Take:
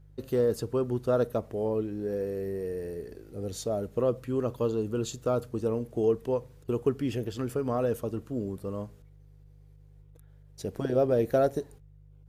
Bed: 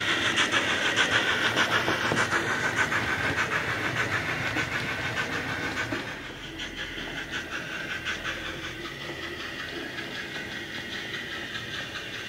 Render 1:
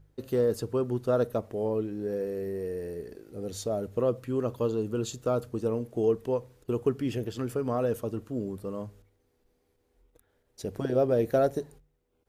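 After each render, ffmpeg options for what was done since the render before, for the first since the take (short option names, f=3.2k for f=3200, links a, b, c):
-af "bandreject=f=50:t=h:w=4,bandreject=f=100:t=h:w=4,bandreject=f=150:t=h:w=4"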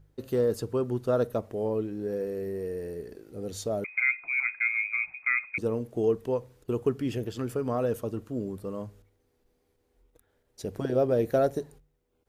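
-filter_complex "[0:a]asettb=1/sr,asplit=3[a][b][c];[a]atrim=end=3.844[d];[b]atrim=start=3.84:end=5.58,asetpts=PTS-STARTPTS,afade=t=in:d=0.004:c=qsin,afade=t=out:st=1.736:d=0.004:c=qsin,lowpass=f=2.2k:t=q:w=0.5098,lowpass=f=2.2k:t=q:w=0.6013,lowpass=f=2.2k:t=q:w=0.9,lowpass=f=2.2k:t=q:w=2.563,afreqshift=-2600[e];[c]atrim=start=5.576[f];[d][e]acrossfade=d=0.004:c1=hsin:c2=qsin[g];[g][f]acrossfade=d=0.004:c1=qsin:c2=hsin"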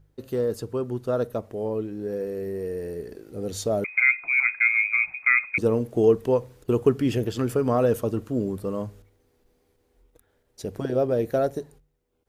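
-af "dynaudnorm=f=470:g=13:m=7dB"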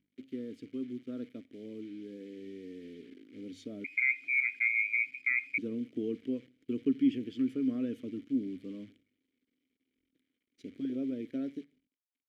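-filter_complex "[0:a]acrusher=bits=8:dc=4:mix=0:aa=0.000001,asplit=3[a][b][c];[a]bandpass=f=270:t=q:w=8,volume=0dB[d];[b]bandpass=f=2.29k:t=q:w=8,volume=-6dB[e];[c]bandpass=f=3.01k:t=q:w=8,volume=-9dB[f];[d][e][f]amix=inputs=3:normalize=0"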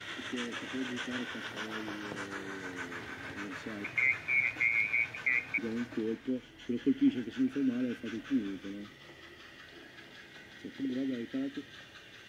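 -filter_complex "[1:a]volume=-16.5dB[a];[0:a][a]amix=inputs=2:normalize=0"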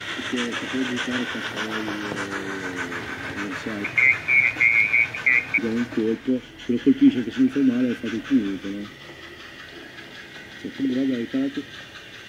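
-af "volume=11.5dB"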